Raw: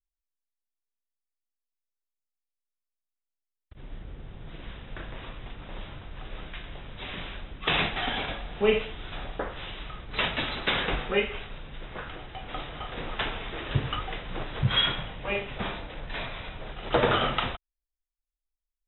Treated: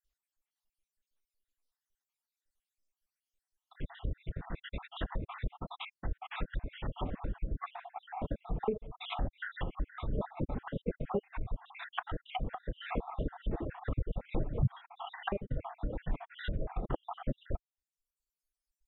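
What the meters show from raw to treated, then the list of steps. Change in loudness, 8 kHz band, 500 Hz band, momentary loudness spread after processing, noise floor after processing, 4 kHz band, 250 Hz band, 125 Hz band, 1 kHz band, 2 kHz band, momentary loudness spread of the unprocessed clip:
-10.0 dB, no reading, -9.5 dB, 7 LU, under -85 dBFS, -19.0 dB, -4.0 dB, -3.0 dB, -8.0 dB, -14.0 dB, 18 LU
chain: random holes in the spectrogram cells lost 66%; compression 8:1, threshold -33 dBFS, peak gain reduction 15 dB; reverb removal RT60 1.5 s; dynamic bell 390 Hz, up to -4 dB, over -59 dBFS, Q 3.8; low-pass that closes with the level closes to 500 Hz, closed at -38 dBFS; trim +8.5 dB

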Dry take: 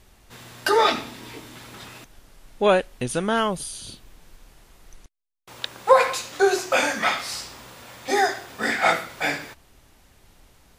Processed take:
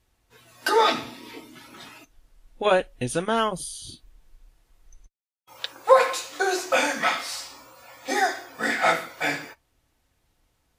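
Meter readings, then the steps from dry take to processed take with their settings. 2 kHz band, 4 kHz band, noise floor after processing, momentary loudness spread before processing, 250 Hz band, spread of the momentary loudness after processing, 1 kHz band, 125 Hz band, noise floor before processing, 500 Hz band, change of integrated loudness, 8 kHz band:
-1.0 dB, -1.5 dB, -71 dBFS, 22 LU, -2.5 dB, 21 LU, -1.0 dB, -2.5 dB, -57 dBFS, -2.0 dB, -1.5 dB, -1.5 dB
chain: spectral noise reduction 13 dB; comb of notches 200 Hz

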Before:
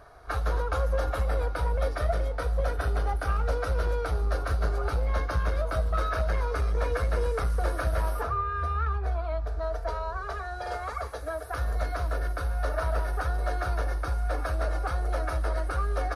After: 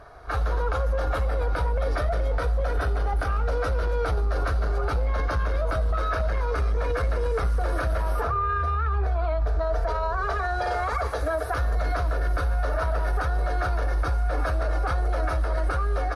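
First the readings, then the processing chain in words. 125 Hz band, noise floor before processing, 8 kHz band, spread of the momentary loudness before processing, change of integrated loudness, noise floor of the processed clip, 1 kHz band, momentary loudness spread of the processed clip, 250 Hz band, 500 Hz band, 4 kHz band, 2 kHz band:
+3.0 dB, -36 dBFS, -0.5 dB, 4 LU, +3.5 dB, -27 dBFS, +4.0 dB, 1 LU, +3.5 dB, +3.0 dB, +2.0 dB, +4.0 dB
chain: level rider gain up to 8 dB; treble shelf 7.7 kHz -9.5 dB; peak limiter -22.5 dBFS, peak gain reduction 15 dB; trim +4.5 dB

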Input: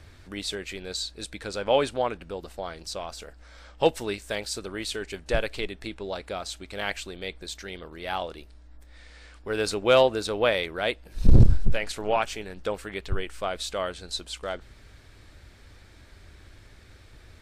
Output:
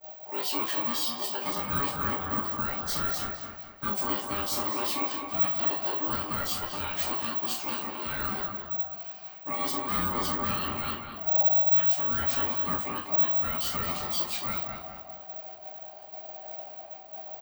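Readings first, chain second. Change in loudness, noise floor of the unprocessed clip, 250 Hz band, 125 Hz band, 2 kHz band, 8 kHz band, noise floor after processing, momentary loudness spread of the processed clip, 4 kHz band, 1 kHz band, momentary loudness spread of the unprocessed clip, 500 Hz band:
+1.5 dB, -52 dBFS, -3.0 dB, -12.5 dB, -3.5 dB, 0.0 dB, -46 dBFS, 17 LU, -2.5 dB, 0.0 dB, 16 LU, -12.0 dB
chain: bass shelf 69 Hz +10.5 dB; expander -37 dBFS; reverse; compression 10:1, threshold -31 dBFS, peak gain reduction 30 dB; reverse; peak limiter -26 dBFS, peak gain reduction 9 dB; careless resampling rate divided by 2×, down none, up zero stuff; high-pass 50 Hz 6 dB/octave; on a send: filtered feedback delay 209 ms, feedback 45%, low-pass 2.6 kHz, level -6 dB; on the sum: ring modulator 700 Hz; echo from a far wall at 43 m, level -12 dB; gated-style reverb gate 110 ms falling, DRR -5.5 dB

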